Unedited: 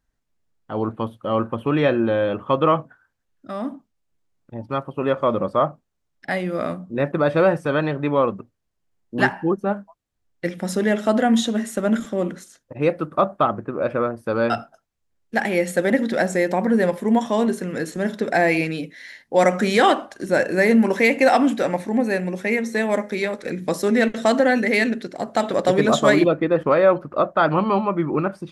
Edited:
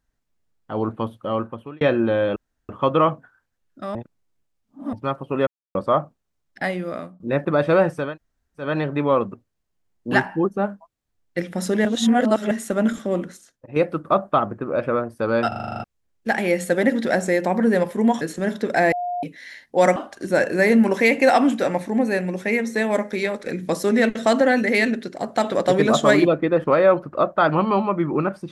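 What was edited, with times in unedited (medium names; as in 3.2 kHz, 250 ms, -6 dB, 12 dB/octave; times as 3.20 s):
1.19–1.81 s: fade out
2.36 s: insert room tone 0.33 s
3.62–4.60 s: reverse
5.14–5.42 s: mute
6.32–6.87 s: fade out, to -16.5 dB
7.73 s: insert room tone 0.60 s, crossfade 0.24 s
10.92–11.58 s: reverse
12.22–12.83 s: fade out, to -8 dB
14.55 s: stutter in place 0.04 s, 9 plays
17.28–17.79 s: delete
18.50–18.81 s: bleep 711 Hz -23 dBFS
19.54–19.95 s: delete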